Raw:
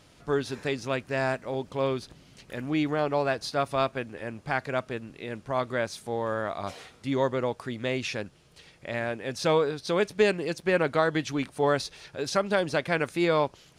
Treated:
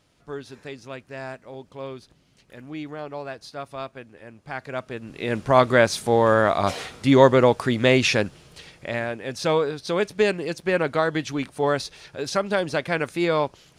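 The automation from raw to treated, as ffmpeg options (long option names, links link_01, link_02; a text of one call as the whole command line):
ffmpeg -i in.wav -af "volume=12dB,afade=type=in:start_time=4.39:duration=0.61:silence=0.375837,afade=type=in:start_time=5:duration=0.39:silence=0.281838,afade=type=out:start_time=8.16:duration=0.92:silence=0.316228" out.wav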